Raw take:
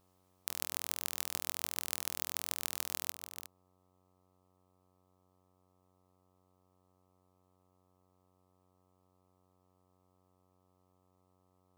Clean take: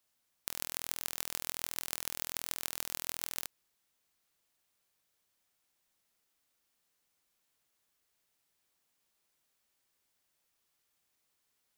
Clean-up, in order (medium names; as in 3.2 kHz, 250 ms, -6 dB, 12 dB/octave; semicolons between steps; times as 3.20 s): de-hum 92.1 Hz, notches 14; trim 0 dB, from 3.11 s +9 dB